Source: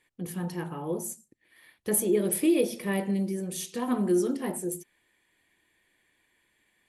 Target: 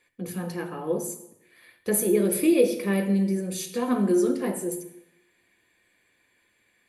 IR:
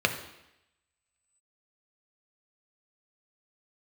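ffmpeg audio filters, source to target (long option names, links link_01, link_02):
-filter_complex "[0:a]asplit=2[link_01][link_02];[1:a]atrim=start_sample=2205,highshelf=frequency=6300:gain=10[link_03];[link_02][link_03]afir=irnorm=-1:irlink=0,volume=-8.5dB[link_04];[link_01][link_04]amix=inputs=2:normalize=0,volume=-3dB"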